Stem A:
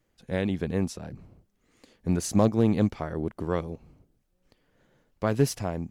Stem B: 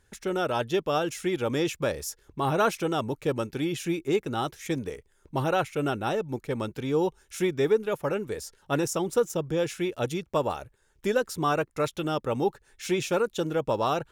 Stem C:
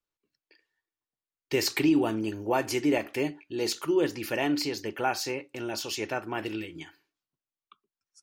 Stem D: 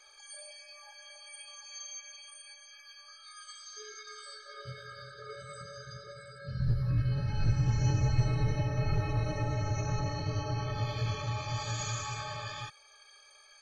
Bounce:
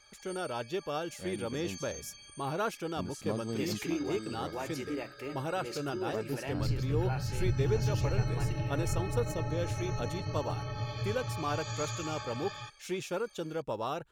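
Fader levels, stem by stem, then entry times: -15.0, -9.0, -12.5, -3.0 dB; 0.90, 0.00, 2.05, 0.00 s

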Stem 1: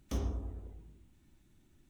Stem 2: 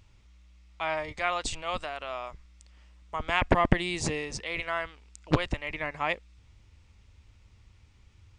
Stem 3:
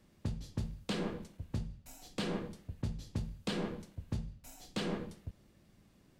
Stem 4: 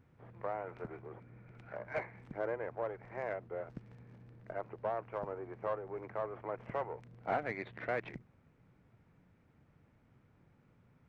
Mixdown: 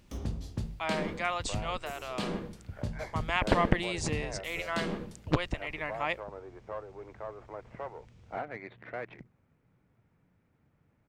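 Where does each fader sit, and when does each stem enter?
-4.5, -3.0, +1.5, -3.0 dB; 0.00, 0.00, 0.00, 1.05 s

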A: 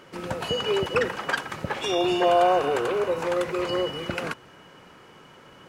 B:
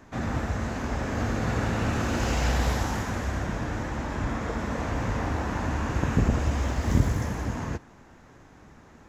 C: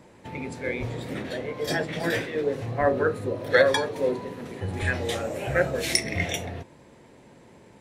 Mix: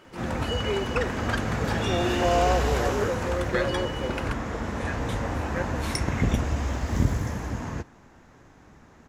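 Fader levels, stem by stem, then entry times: -4.0, -1.0, -9.0 dB; 0.00, 0.05, 0.00 s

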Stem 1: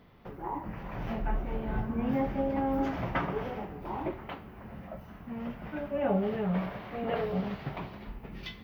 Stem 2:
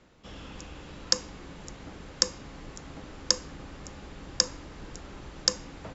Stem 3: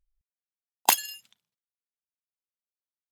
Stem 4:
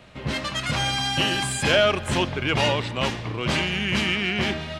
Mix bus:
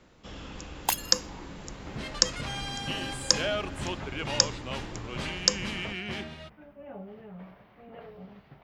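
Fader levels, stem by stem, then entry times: -15.0, +1.5, -6.5, -11.5 dB; 0.85, 0.00, 0.00, 1.70 s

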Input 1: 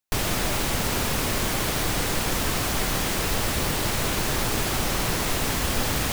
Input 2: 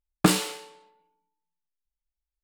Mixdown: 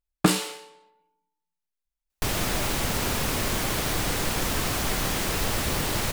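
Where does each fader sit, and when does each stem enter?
-1.5, -0.5 dB; 2.10, 0.00 s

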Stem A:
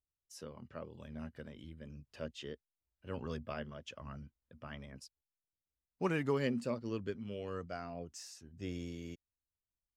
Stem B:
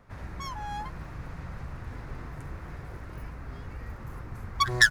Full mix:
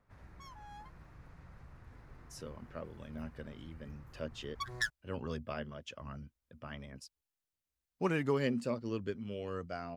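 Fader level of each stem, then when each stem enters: +1.5, -15.5 dB; 2.00, 0.00 s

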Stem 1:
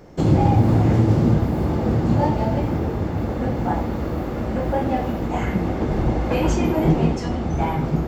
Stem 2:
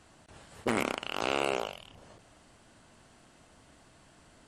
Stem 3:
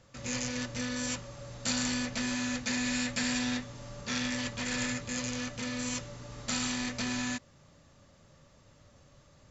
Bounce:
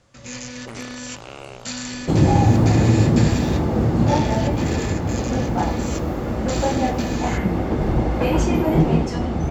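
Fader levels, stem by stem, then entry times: +1.0, -8.5, +1.0 dB; 1.90, 0.00, 0.00 s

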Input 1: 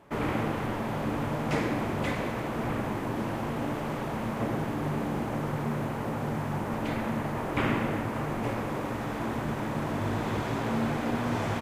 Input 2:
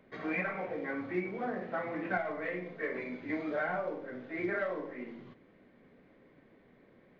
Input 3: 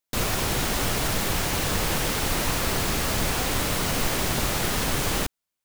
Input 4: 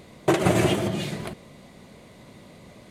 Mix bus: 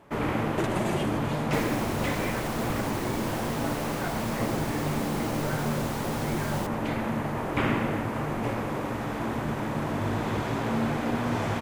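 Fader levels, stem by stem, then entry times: +1.5, -4.5, -13.0, -9.5 dB; 0.00, 1.90, 1.40, 0.30 s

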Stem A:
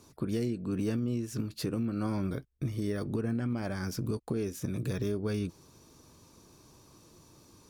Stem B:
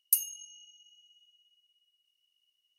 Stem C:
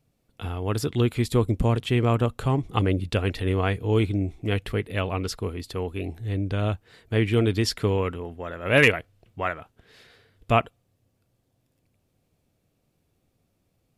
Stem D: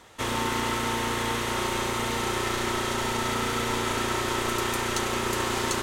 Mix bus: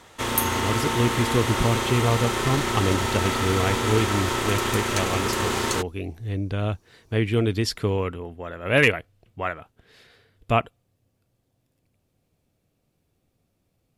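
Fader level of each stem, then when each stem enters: -8.0, +0.5, -0.5, +2.0 dB; 0.35, 0.25, 0.00, 0.00 s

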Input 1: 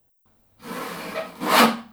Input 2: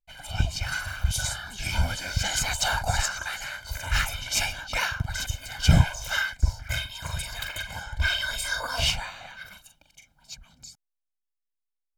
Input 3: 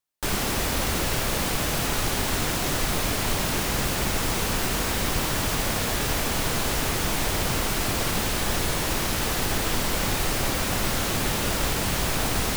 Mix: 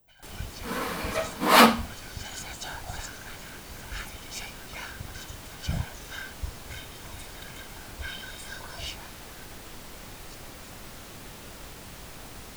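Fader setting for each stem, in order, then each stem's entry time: 0.0, -13.0, -18.5 dB; 0.00, 0.00, 0.00 s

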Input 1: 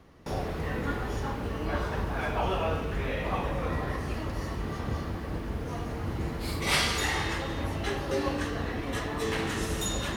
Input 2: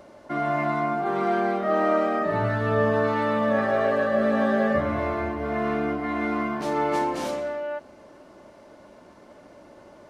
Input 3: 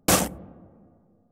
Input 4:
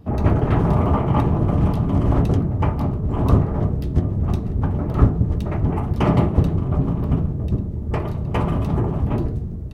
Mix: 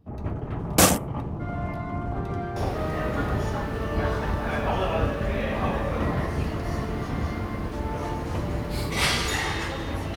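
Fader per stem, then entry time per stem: +2.0, -10.5, +2.5, -13.5 dB; 2.30, 1.10, 0.70, 0.00 s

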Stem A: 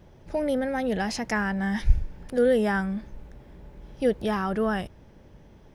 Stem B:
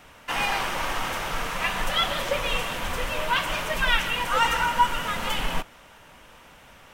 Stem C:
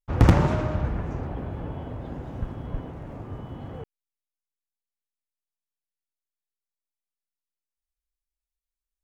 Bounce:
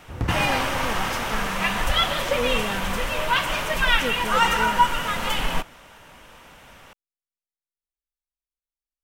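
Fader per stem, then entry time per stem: -6.5, +2.5, -9.5 dB; 0.00, 0.00, 0.00 s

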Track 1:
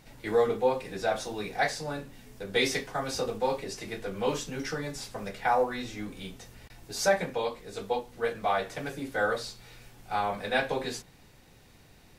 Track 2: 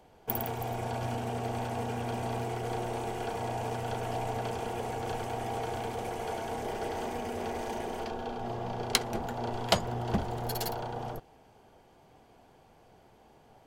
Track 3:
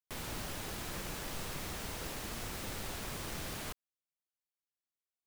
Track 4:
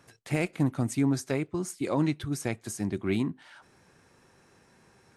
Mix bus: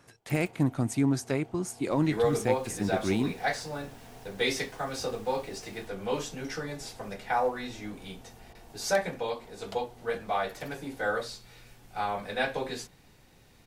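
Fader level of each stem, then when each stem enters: -2.0, -19.5, -15.0, 0.0 dB; 1.85, 0.00, 2.15, 0.00 s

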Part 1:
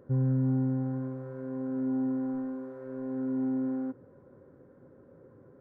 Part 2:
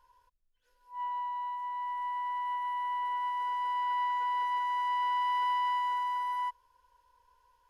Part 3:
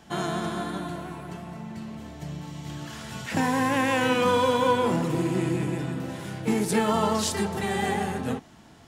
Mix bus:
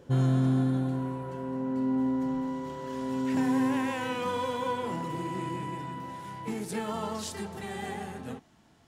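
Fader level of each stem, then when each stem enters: +2.0, -10.0, -10.0 dB; 0.00, 0.00, 0.00 s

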